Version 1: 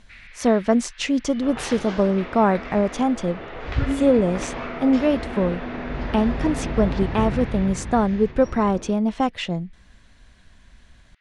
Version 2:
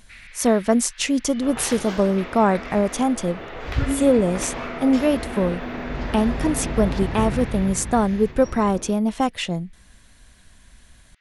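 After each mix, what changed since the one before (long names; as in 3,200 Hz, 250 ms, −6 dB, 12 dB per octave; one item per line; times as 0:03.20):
master: remove high-frequency loss of the air 97 metres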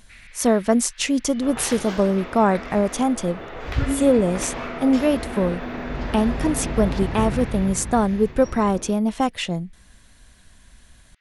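first sound −3.0 dB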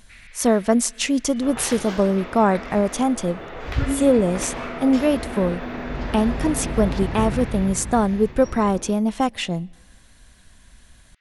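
speech: send on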